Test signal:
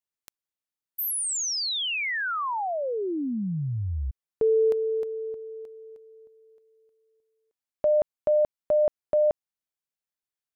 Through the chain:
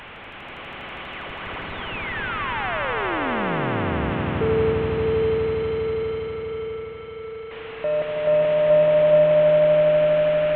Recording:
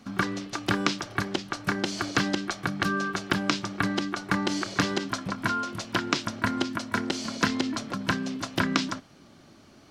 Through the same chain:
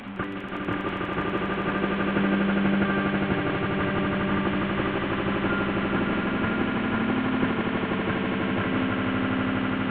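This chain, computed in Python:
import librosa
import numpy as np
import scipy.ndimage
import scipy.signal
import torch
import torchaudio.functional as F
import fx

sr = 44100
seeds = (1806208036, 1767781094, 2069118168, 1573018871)

y = fx.delta_mod(x, sr, bps=16000, step_db=-31.5)
y = fx.echo_swell(y, sr, ms=81, loudest=8, wet_db=-5.5)
y = F.gain(torch.from_numpy(y), -1.5).numpy()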